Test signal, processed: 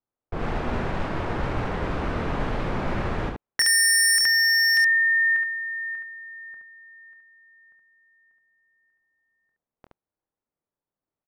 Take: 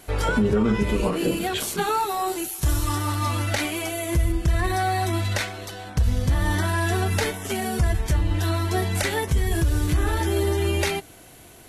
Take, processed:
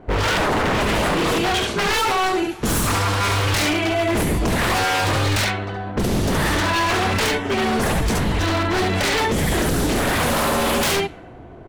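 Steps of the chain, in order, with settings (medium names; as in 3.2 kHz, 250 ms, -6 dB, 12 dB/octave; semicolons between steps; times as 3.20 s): early reflections 25 ms -10 dB, 71 ms -3.5 dB; level-controlled noise filter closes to 850 Hz, open at -15.5 dBFS; wavefolder -23 dBFS; trim +8.5 dB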